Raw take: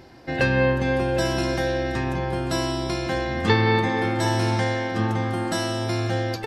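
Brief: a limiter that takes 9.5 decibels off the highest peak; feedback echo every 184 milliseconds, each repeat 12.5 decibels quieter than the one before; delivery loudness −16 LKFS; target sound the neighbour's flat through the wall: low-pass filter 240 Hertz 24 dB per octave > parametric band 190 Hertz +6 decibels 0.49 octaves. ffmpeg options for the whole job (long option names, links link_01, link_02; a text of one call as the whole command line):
ffmpeg -i in.wav -af "alimiter=limit=-14dB:level=0:latency=1,lowpass=frequency=240:width=0.5412,lowpass=frequency=240:width=1.3066,equalizer=frequency=190:width_type=o:width=0.49:gain=6,aecho=1:1:184|368|552:0.237|0.0569|0.0137,volume=12dB" out.wav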